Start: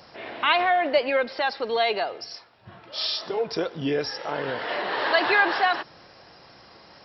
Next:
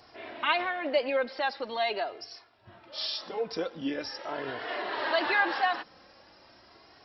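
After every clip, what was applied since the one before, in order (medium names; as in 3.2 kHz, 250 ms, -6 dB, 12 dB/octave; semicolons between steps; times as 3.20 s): flange 0.43 Hz, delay 2.7 ms, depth 1.3 ms, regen -24%; trim -2.5 dB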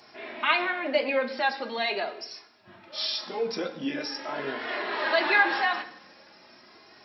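reverberation RT60 0.65 s, pre-delay 3 ms, DRR 4 dB; trim +3 dB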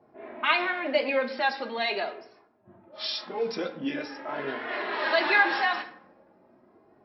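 level-controlled noise filter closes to 550 Hz, open at -23 dBFS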